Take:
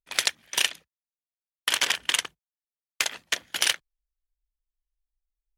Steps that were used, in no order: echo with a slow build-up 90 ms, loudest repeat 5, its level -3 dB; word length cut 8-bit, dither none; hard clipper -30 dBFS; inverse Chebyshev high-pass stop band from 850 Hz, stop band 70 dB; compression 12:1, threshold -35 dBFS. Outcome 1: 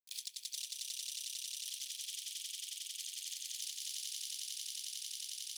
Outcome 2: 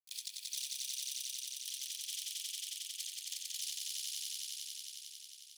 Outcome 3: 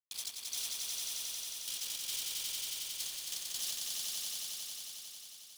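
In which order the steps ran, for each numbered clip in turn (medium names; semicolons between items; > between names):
word length cut > echo with a slow build-up > compression > hard clipper > inverse Chebyshev high-pass; word length cut > compression > echo with a slow build-up > hard clipper > inverse Chebyshev high-pass; hard clipper > compression > inverse Chebyshev high-pass > word length cut > echo with a slow build-up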